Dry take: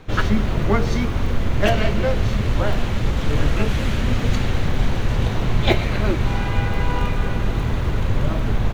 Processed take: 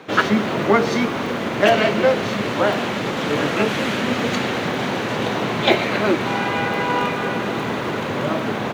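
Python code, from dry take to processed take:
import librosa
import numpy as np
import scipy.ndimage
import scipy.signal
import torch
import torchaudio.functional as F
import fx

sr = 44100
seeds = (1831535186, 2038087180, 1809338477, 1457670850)

p1 = scipy.signal.sosfilt(scipy.signal.bessel(4, 270.0, 'highpass', norm='mag', fs=sr, output='sos'), x)
p2 = fx.high_shelf(p1, sr, hz=4500.0, db=-6.0)
p3 = fx.over_compress(p2, sr, threshold_db=-20.0, ratio=-1.0)
y = p2 + F.gain(torch.from_numpy(p3), 2.5).numpy()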